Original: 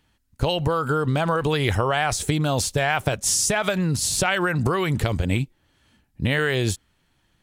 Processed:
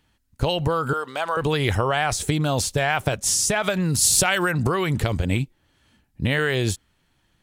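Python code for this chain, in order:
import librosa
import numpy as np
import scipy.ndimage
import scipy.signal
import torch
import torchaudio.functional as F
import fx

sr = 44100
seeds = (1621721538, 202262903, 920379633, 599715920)

y = fx.highpass(x, sr, hz=620.0, slope=12, at=(0.93, 1.37))
y = fx.high_shelf(y, sr, hz=fx.line((3.84, 6700.0), (4.5, 4700.0)), db=10.0, at=(3.84, 4.5), fade=0.02)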